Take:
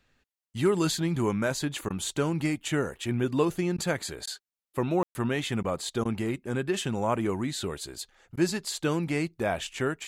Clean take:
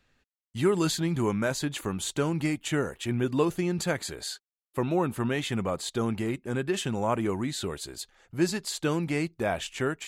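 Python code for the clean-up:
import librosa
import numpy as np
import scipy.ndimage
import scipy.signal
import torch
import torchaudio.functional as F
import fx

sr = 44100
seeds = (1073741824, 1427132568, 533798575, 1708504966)

y = fx.fix_declip(x, sr, threshold_db=-13.5)
y = fx.fix_ambience(y, sr, seeds[0], print_start_s=7.87, print_end_s=8.37, start_s=5.03, end_s=5.15)
y = fx.fix_interpolate(y, sr, at_s=(1.89, 3.77, 4.26, 5.63, 6.04, 8.36), length_ms=11.0)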